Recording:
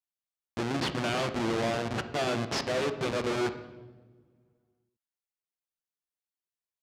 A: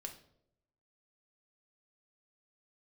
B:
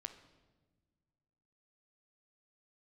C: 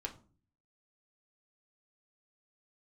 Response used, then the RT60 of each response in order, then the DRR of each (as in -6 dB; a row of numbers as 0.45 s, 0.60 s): B; no single decay rate, no single decay rate, 0.40 s; 2.5 dB, 8.5 dB, 0.5 dB